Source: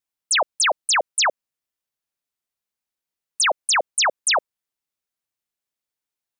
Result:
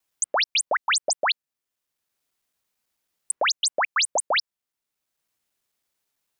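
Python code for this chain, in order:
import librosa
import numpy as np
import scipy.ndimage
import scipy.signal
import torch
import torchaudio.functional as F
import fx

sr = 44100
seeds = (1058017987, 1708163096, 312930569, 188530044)

y = fx.local_reverse(x, sr, ms=110.0)
y = fx.band_squash(y, sr, depth_pct=40)
y = F.gain(torch.from_numpy(y), -3.0).numpy()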